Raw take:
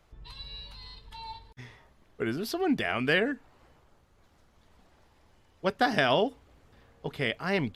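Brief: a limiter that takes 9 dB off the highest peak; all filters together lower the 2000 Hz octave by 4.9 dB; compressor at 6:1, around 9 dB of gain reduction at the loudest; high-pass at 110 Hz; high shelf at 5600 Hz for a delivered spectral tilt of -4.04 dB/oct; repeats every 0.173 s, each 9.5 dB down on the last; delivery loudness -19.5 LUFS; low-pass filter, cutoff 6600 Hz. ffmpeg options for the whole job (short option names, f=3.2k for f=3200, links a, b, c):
-af "highpass=110,lowpass=6.6k,equalizer=f=2k:t=o:g=-5.5,highshelf=f=5.6k:g=-6,acompressor=threshold=-31dB:ratio=6,alimiter=level_in=3.5dB:limit=-24dB:level=0:latency=1,volume=-3.5dB,aecho=1:1:173|346|519|692:0.335|0.111|0.0365|0.012,volume=20.5dB"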